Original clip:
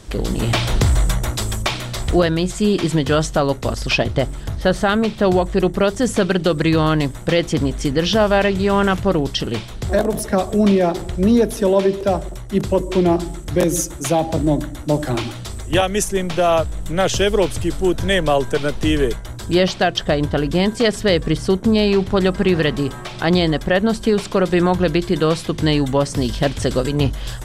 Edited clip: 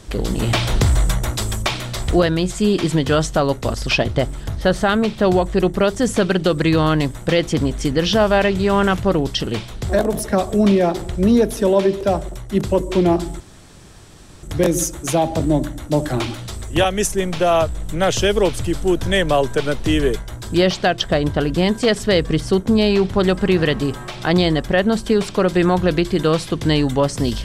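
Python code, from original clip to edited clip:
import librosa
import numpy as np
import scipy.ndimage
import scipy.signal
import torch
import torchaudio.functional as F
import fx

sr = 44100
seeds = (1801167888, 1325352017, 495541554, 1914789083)

y = fx.edit(x, sr, fx.insert_room_tone(at_s=13.4, length_s=1.03), tone=tone)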